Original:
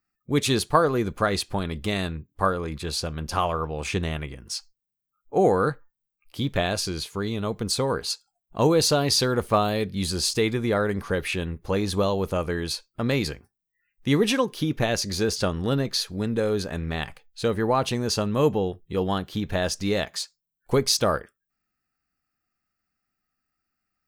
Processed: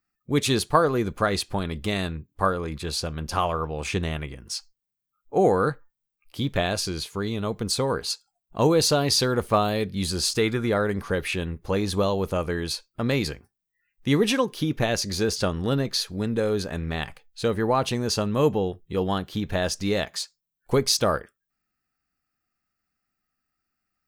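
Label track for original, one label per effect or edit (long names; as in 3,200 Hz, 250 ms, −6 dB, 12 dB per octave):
10.180000	10.670000	parametric band 1,400 Hz +4 dB → +11.5 dB 0.36 octaves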